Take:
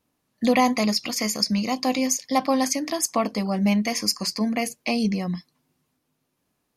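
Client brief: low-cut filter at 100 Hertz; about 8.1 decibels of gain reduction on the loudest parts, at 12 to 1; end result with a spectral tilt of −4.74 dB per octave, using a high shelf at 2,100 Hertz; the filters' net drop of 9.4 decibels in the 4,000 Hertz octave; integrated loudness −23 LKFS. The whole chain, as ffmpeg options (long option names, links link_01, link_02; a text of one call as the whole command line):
ffmpeg -i in.wav -af "highpass=100,highshelf=frequency=2100:gain=-6.5,equalizer=frequency=4000:width_type=o:gain=-5.5,acompressor=threshold=-23dB:ratio=12,volume=6dB" out.wav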